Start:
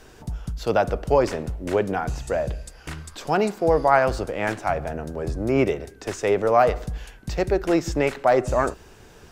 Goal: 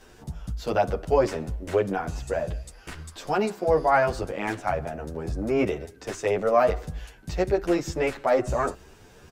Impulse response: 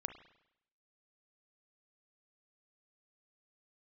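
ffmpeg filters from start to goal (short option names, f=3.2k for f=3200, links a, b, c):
-filter_complex "[0:a]asplit=2[a][b];[b]adelay=9.9,afreqshift=2.9[c];[a][c]amix=inputs=2:normalize=1"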